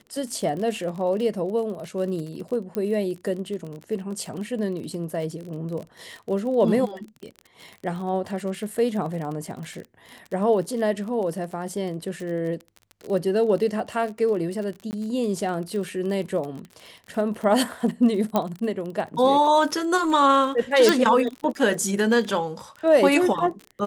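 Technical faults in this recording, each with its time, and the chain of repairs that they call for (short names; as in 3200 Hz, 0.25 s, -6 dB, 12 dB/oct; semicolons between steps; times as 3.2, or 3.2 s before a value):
crackle 35/s -31 dBFS
2.75 pop -15 dBFS
14.91–14.93 gap 19 ms
18.36 pop -9 dBFS
20.89 pop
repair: de-click; interpolate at 14.91, 19 ms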